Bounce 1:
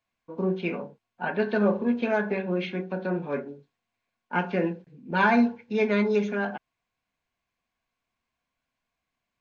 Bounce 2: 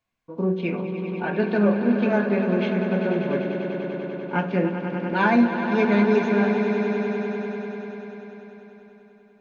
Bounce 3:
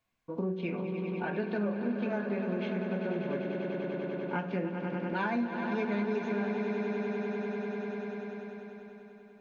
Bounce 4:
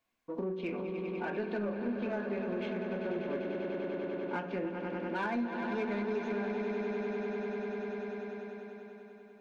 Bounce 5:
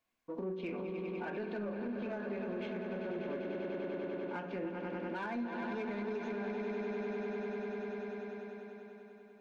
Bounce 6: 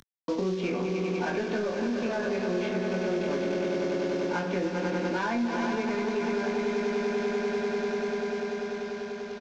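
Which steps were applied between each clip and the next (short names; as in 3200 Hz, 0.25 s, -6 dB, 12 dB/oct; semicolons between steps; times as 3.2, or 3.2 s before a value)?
low shelf 350 Hz +5 dB; swelling echo 98 ms, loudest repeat 5, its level -11 dB
compressor 3:1, threshold -33 dBFS, peak gain reduction 14.5 dB
resonant low shelf 200 Hz -6.5 dB, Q 1.5; in parallel at -4 dB: soft clip -35.5 dBFS, distortion -9 dB; on the sum: gain -4.5 dB
limiter -28.5 dBFS, peak gain reduction 4.5 dB; gain -2.5 dB
CVSD 32 kbps; doubler 22 ms -4 dB; three-band squash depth 70%; gain +9 dB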